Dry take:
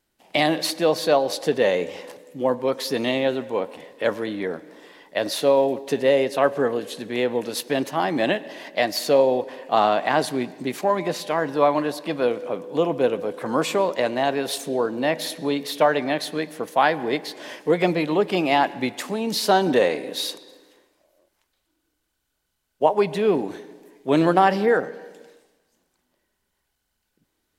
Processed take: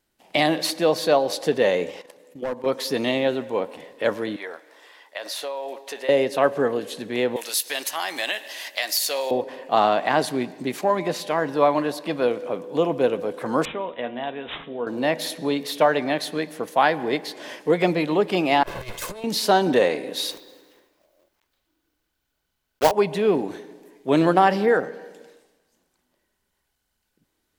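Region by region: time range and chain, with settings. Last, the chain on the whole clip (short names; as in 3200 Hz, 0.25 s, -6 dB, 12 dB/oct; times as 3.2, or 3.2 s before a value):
1.91–2.66 low shelf 100 Hz -11.5 dB + hard clip -18 dBFS + level quantiser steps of 13 dB
4.36–6.09 HPF 740 Hz + compressor 5:1, threshold -27 dBFS
7.36–9.31 HPF 630 Hz 6 dB/oct + tilt +4.5 dB/oct + compressor 2.5:1, threshold -22 dBFS
13.65–14.87 high shelf 4400 Hz +5 dB + resonator 240 Hz, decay 0.26 s, mix 70% + careless resampling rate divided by 6×, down none, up filtered
18.63–19.24 minimum comb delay 1.9 ms + high shelf 7900 Hz +10 dB + negative-ratio compressor -32 dBFS, ratio -0.5
20.31–22.93 block floating point 3-bit + bell 9100 Hz -6 dB 1.1 oct
whole clip: dry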